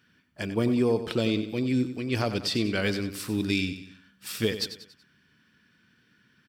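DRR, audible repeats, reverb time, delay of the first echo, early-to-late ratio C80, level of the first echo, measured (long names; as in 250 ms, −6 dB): no reverb audible, 4, no reverb audible, 94 ms, no reverb audible, −11.5 dB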